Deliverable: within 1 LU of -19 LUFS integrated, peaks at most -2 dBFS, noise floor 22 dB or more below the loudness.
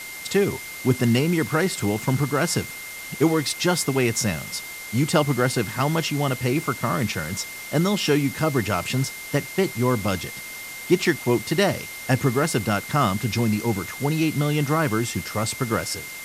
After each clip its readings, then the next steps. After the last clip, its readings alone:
steady tone 2100 Hz; tone level -36 dBFS; noise floor -36 dBFS; noise floor target -46 dBFS; loudness -23.5 LUFS; peak -5.5 dBFS; loudness target -19.0 LUFS
-> notch 2100 Hz, Q 30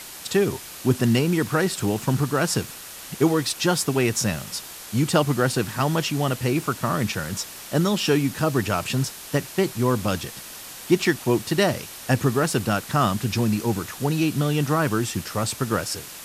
steady tone none; noise floor -39 dBFS; noise floor target -46 dBFS
-> denoiser 7 dB, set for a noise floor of -39 dBFS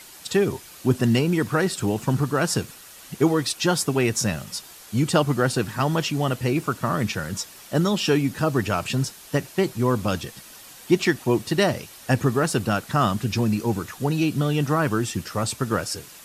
noise floor -45 dBFS; noise floor target -46 dBFS
-> denoiser 6 dB, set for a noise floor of -45 dBFS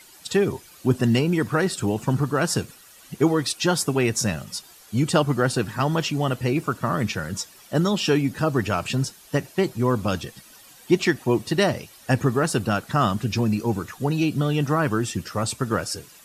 noise floor -49 dBFS; loudness -23.5 LUFS; peak -5.5 dBFS; loudness target -19.0 LUFS
-> gain +4.5 dB; limiter -2 dBFS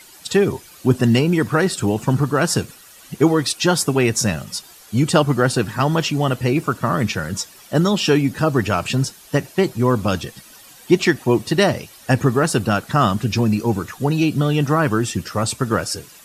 loudness -19.0 LUFS; peak -2.0 dBFS; noise floor -45 dBFS

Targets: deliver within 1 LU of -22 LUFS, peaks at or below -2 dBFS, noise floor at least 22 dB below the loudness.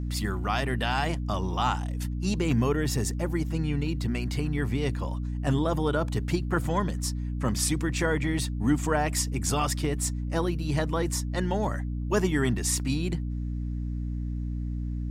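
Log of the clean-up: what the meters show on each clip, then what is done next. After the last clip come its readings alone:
hum 60 Hz; harmonics up to 300 Hz; hum level -28 dBFS; loudness -28.5 LUFS; peak -12.5 dBFS; loudness target -22.0 LUFS
-> notches 60/120/180/240/300 Hz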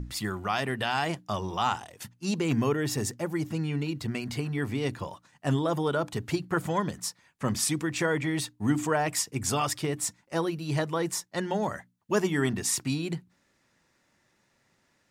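hum none; loudness -29.5 LUFS; peak -13.0 dBFS; loudness target -22.0 LUFS
-> gain +7.5 dB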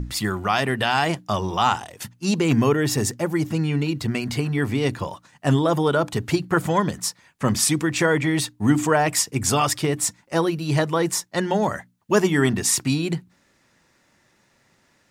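loudness -22.0 LUFS; peak -5.5 dBFS; noise floor -63 dBFS

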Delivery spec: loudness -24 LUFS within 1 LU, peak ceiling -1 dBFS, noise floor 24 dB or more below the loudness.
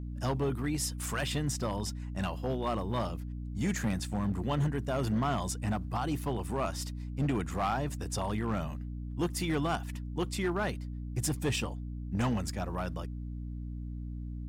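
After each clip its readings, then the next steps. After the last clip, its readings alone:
clipped 1.9%; flat tops at -24.5 dBFS; hum 60 Hz; harmonics up to 300 Hz; hum level -36 dBFS; loudness -34.0 LUFS; peak -24.5 dBFS; loudness target -24.0 LUFS
-> clip repair -24.5 dBFS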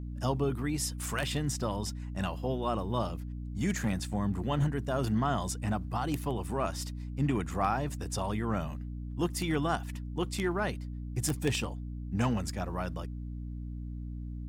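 clipped 0.0%; hum 60 Hz; harmonics up to 300 Hz; hum level -36 dBFS
-> notches 60/120/180/240/300 Hz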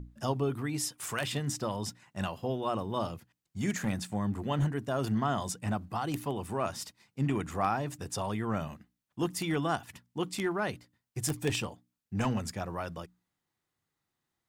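hum none; loudness -33.5 LUFS; peak -15.0 dBFS; loudness target -24.0 LUFS
-> gain +9.5 dB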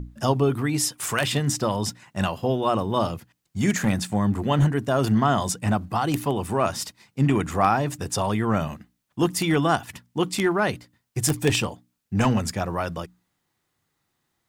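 loudness -24.0 LUFS; peak -5.5 dBFS; noise floor -76 dBFS

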